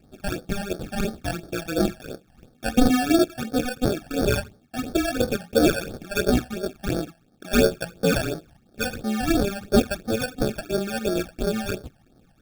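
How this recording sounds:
aliases and images of a low sample rate 1,000 Hz, jitter 0%
phaser sweep stages 12, 2.9 Hz, lowest notch 370–2,700 Hz

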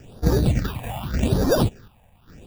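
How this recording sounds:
aliases and images of a low sample rate 2,100 Hz, jitter 0%
phaser sweep stages 6, 0.85 Hz, lowest notch 350–2,700 Hz
chopped level 0.88 Hz, depth 65%, duty 65%

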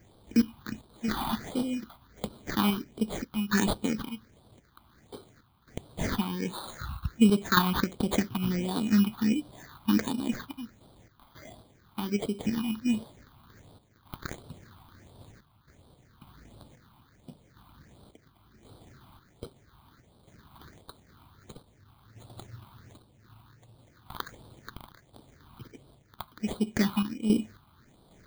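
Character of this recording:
aliases and images of a low sample rate 2,700 Hz, jitter 0%
sample-and-hold tremolo 3.7 Hz, depth 75%
phaser sweep stages 6, 1.4 Hz, lowest notch 470–1,900 Hz

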